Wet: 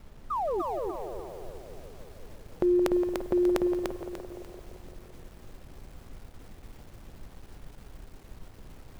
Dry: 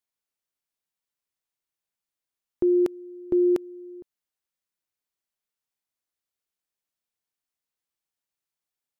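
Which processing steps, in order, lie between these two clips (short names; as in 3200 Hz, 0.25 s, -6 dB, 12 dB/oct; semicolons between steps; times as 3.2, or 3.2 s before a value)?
EQ curve 210 Hz 0 dB, 350 Hz -8 dB, 550 Hz +7 dB; in parallel at -2 dB: limiter -22 dBFS, peak gain reduction 9 dB; on the sum: painted sound fall, 0.3–0.62, 320–1300 Hz -29 dBFS; added noise brown -44 dBFS; crossover distortion -56 dBFS; on a send: narrowing echo 0.171 s, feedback 80%, band-pass 510 Hz, level -8 dB; on the sum: lo-fi delay 0.295 s, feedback 35%, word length 9-bit, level -3.5 dB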